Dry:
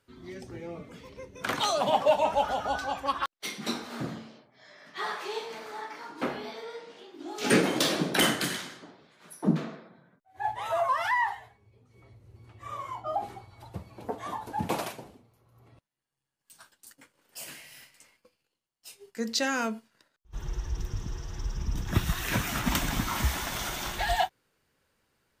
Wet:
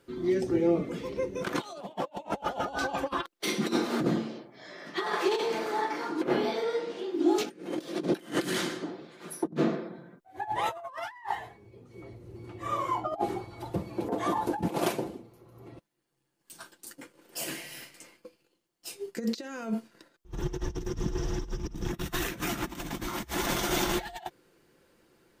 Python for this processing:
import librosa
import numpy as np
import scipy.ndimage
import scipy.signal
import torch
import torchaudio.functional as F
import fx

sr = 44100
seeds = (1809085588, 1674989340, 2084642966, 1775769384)

y = fx.over_compress(x, sr, threshold_db=-35.0, ratio=-0.5)
y = fx.peak_eq(y, sr, hz=340.0, db=11.0, octaves=1.3)
y = y + 0.34 * np.pad(y, (int(5.8 * sr / 1000.0), 0))[:len(y)]